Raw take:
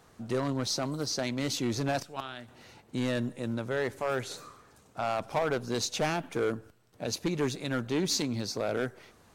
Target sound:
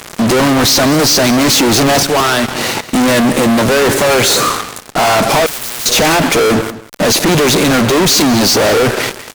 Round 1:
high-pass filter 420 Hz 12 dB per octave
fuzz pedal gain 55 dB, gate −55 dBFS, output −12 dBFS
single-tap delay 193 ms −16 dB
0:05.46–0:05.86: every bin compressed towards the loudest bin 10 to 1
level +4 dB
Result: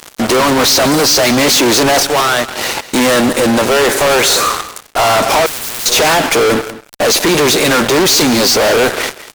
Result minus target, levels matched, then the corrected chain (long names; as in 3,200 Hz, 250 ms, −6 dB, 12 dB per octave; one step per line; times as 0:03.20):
125 Hz band −5.5 dB
high-pass filter 170 Hz 12 dB per octave
fuzz pedal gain 55 dB, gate −55 dBFS, output −12 dBFS
single-tap delay 193 ms −16 dB
0:05.46–0:05.86: every bin compressed towards the loudest bin 10 to 1
level +4 dB